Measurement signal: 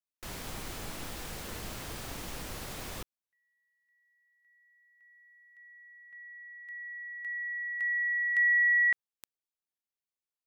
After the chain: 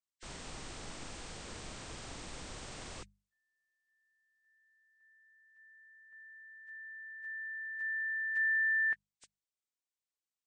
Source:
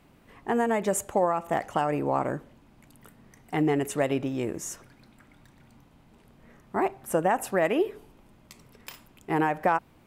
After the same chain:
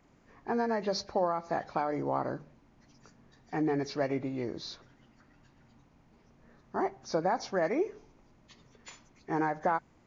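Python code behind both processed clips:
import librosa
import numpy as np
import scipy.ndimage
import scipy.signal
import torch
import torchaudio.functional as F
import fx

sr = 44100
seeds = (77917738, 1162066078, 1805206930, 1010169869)

y = fx.freq_compress(x, sr, knee_hz=1500.0, ratio=1.5)
y = fx.hum_notches(y, sr, base_hz=50, count=4)
y = y * librosa.db_to_amplitude(-5.0)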